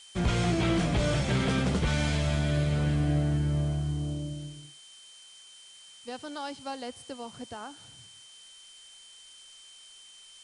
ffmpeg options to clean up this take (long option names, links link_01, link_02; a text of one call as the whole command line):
ffmpeg -i in.wav -af "bandreject=frequency=3100:width=30,afftdn=noise_reduction=23:noise_floor=-52" out.wav